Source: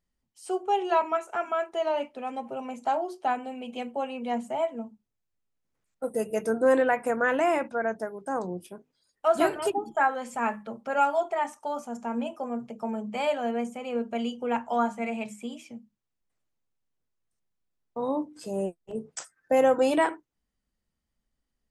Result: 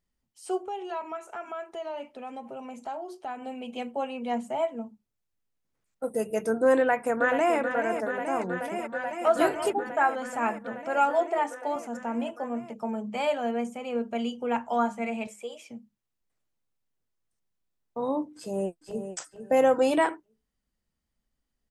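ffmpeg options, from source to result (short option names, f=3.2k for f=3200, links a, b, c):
-filter_complex "[0:a]asettb=1/sr,asplit=3[a][b][c];[a]atrim=end=0.684[d];[b]atrim=start=0.68:end=3.42,asetpts=PTS-STARTPTS,afade=t=in:d=0.004:c=qsin,afade=t=out:st=2.736:d=0.004:c=qsin,acompressor=threshold=-39dB:ratio=2:attack=3.2:release=140:knee=1:detection=peak[e];[c]atrim=start=3.416[f];[d][e]acrossfade=d=0.004:c1=hsin:c2=qsin[g];[g][f]acrossfade=d=0.004:c1=qsin:c2=hsin,asplit=2[h][i];[i]afade=t=in:st=6.77:d=0.01,afade=t=out:st=7.57:d=0.01,aecho=0:1:430|860|1290|1720|2150|2580|3010|3440|3870|4300|4730|5160:0.398107|0.338391|0.287632|0.244488|0.207814|0.176642|0.150146|0.127624|0.10848|0.0922084|0.0783771|0.0666205[j];[h][j]amix=inputs=2:normalize=0,asettb=1/sr,asplit=3[k][l][m];[k]atrim=end=8.714[n];[l]atrim=start=8.71:end=9.26,asetpts=PTS-STARTPTS,afade=t=in:d=0.004:c=qsin,afade=t=out:st=0.546:d=0.004:c=qsin,aecho=1:1:5.3:0.93,atrim=end_sample=24255[o];[m]atrim=start=9.256[p];[n][o]acrossfade=d=0.004:c1=hsin:c2=qsin[q];[q][p]acrossfade=d=0.004:c1=qsin:c2=hsin,asettb=1/sr,asplit=3[r][s][t];[r]atrim=end=11.104[u];[s]atrim=start=11.1:end=11.76,asetpts=PTS-STARTPTS,afade=t=in:d=0.004:c=qsin,afade=t=out:st=0.656:d=0.004:c=qsin,lowshelf=f=250:t=q:w=3:g=-8.5[v];[t]atrim=start=11.756[w];[u][v]acrossfade=d=0.004:c1=hsin:c2=qsin[x];[x][w]acrossfade=d=0.004:c1=qsin:c2=hsin,asettb=1/sr,asplit=3[y][z][aa];[y]atrim=end=15.274[ab];[z]atrim=start=15.27:end=15.7,asetpts=PTS-STARTPTS,afade=t=in:d=0.004:c=qsin,afade=t=out:st=0.426:d=0.004:c=qsin,lowshelf=f=360:t=q:w=3:g=-9.5[ac];[aa]atrim=start=15.696[ad];[ab][ac]acrossfade=d=0.004:c1=hsin:c2=qsin[ae];[ae][ad]acrossfade=d=0.004:c1=qsin:c2=hsin,asplit=2[af][ag];[ag]afade=t=in:st=18.36:d=0.01,afade=t=out:st=19.14:d=0.01,aecho=0:1:450|900|1350:0.354813|0.0709627|0.0141925[ah];[af][ah]amix=inputs=2:normalize=0"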